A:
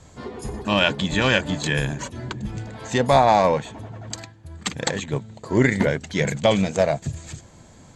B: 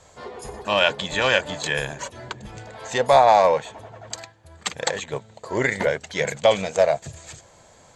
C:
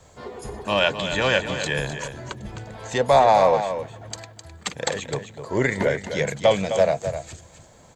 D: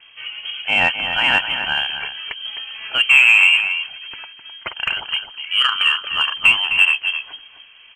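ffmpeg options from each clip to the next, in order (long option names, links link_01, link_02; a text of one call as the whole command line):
ffmpeg -i in.wav -af "lowshelf=frequency=380:width_type=q:width=1.5:gain=-9" out.wav
ffmpeg -i in.wav -filter_complex "[0:a]acrossover=split=390|850[link_01][link_02][link_03];[link_01]acontrast=49[link_04];[link_04][link_02][link_03]amix=inputs=3:normalize=0,acrusher=bits=11:mix=0:aa=0.000001,aecho=1:1:258:0.335,volume=-2dB" out.wav
ffmpeg -i in.wav -filter_complex "[0:a]lowpass=frequency=2800:width_type=q:width=0.5098,lowpass=frequency=2800:width_type=q:width=0.6013,lowpass=frequency=2800:width_type=q:width=0.9,lowpass=frequency=2800:width_type=q:width=2.563,afreqshift=-3300,asplit=2[link_01][link_02];[link_02]asoftclip=type=tanh:threshold=-14.5dB,volume=-5.5dB[link_03];[link_01][link_03]amix=inputs=2:normalize=0,volume=1.5dB" out.wav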